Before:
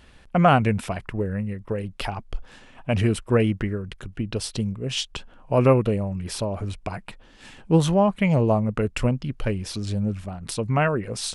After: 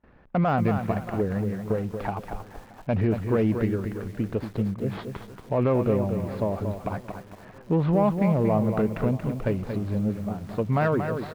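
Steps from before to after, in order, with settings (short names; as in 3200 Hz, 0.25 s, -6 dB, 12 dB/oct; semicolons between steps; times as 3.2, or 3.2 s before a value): median filter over 15 samples; low shelf 78 Hz -12 dB; gate with hold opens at -49 dBFS; air absorption 370 m; feedback echo 0.627 s, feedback 48%, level -23 dB; in parallel at -8.5 dB: soft clip -19 dBFS, distortion -12 dB; on the sum: limiter -15.5 dBFS, peak gain reduction 9 dB; de-esser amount 90%; lo-fi delay 0.231 s, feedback 35%, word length 8-bit, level -7 dB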